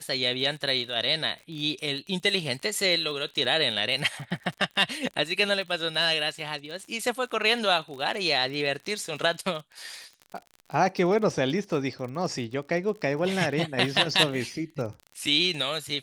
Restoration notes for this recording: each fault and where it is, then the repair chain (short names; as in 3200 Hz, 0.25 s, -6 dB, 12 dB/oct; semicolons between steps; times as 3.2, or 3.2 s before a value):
crackle 46/s -35 dBFS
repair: de-click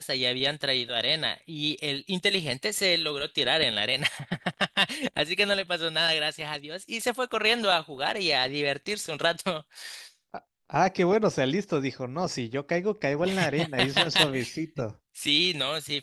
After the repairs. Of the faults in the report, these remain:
none